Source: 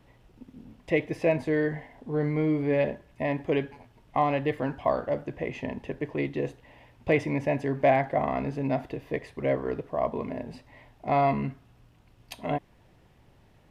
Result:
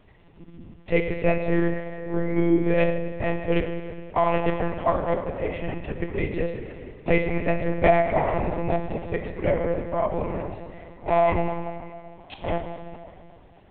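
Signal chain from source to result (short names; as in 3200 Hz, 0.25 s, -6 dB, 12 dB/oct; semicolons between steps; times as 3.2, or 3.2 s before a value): plate-style reverb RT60 2.4 s, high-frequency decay 0.8×, DRR 4.5 dB; monotone LPC vocoder at 8 kHz 170 Hz; gain +3 dB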